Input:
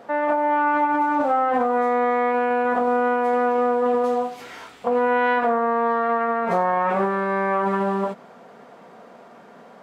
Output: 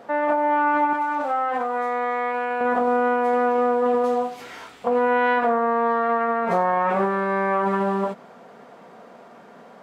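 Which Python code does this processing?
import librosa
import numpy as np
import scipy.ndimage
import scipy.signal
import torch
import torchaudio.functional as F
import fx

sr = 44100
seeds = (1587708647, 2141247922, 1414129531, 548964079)

y = fx.low_shelf(x, sr, hz=500.0, db=-11.5, at=(0.93, 2.61))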